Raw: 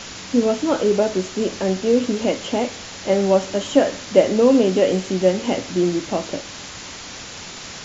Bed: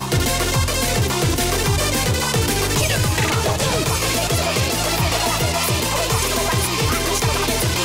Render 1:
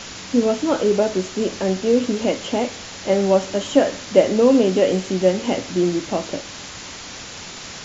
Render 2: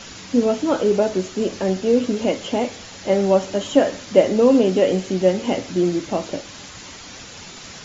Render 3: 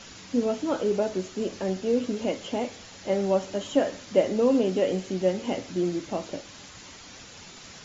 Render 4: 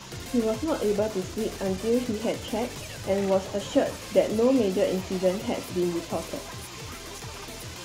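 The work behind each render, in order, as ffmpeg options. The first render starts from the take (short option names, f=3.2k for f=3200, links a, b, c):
-af anull
-af "afftdn=nr=6:nf=-36"
-af "volume=-7.5dB"
-filter_complex "[1:a]volume=-20.5dB[a];[0:a][a]amix=inputs=2:normalize=0"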